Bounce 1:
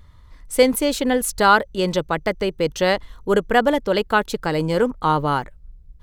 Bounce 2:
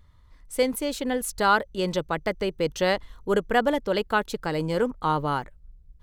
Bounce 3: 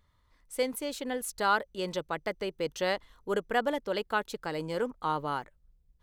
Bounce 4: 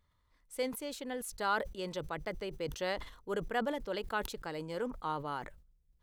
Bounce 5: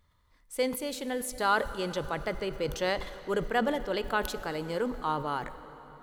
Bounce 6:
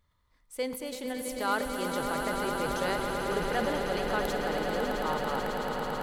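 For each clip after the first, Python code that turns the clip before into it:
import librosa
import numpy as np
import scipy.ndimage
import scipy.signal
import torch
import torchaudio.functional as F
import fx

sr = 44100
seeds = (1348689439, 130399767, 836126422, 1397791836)

y1 = fx.rider(x, sr, range_db=10, speed_s=2.0)
y1 = F.gain(torch.from_numpy(y1), -6.0).numpy()
y2 = fx.low_shelf(y1, sr, hz=170.0, db=-10.0)
y2 = F.gain(torch.from_numpy(y2), -5.5).numpy()
y3 = fx.sustainer(y2, sr, db_per_s=94.0)
y3 = F.gain(torch.from_numpy(y3), -6.0).numpy()
y4 = fx.rev_plate(y3, sr, seeds[0], rt60_s=4.5, hf_ratio=0.75, predelay_ms=0, drr_db=12.5)
y4 = F.gain(torch.from_numpy(y4), 6.0).numpy()
y5 = fx.echo_swell(y4, sr, ms=110, loudest=8, wet_db=-8.5)
y5 = F.gain(torch.from_numpy(y5), -4.0).numpy()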